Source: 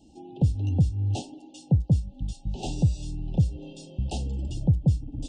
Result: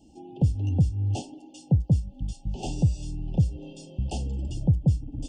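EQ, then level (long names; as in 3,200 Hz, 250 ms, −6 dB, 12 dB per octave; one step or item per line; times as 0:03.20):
notch filter 3,900 Hz, Q 5.2
0.0 dB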